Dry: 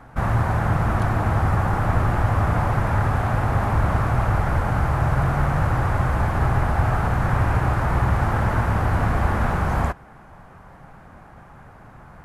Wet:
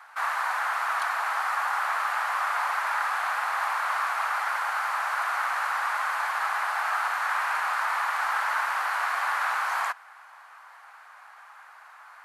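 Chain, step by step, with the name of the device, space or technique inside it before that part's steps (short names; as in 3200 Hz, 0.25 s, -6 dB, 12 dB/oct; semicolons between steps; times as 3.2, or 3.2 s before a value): headphones lying on a table (HPF 1000 Hz 24 dB/oct; bell 4300 Hz +4.5 dB 0.24 oct); gain +3 dB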